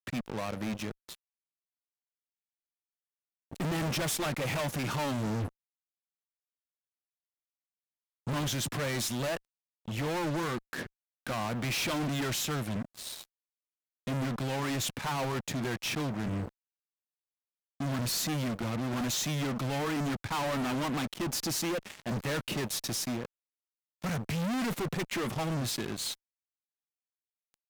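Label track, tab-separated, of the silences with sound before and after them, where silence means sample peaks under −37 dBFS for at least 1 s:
1.150000	3.520000	silence
5.480000	8.270000	silence
16.480000	17.800000	silence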